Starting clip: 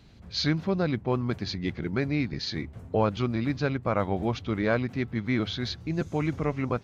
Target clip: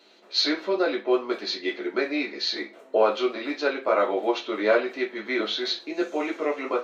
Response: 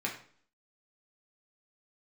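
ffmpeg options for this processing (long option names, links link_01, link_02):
-filter_complex "[0:a]highpass=frequency=390:width=0.5412,highpass=frequency=390:width=1.3066[link_01];[1:a]atrim=start_sample=2205,asetrate=74970,aresample=44100[link_02];[link_01][link_02]afir=irnorm=-1:irlink=0,volume=6dB"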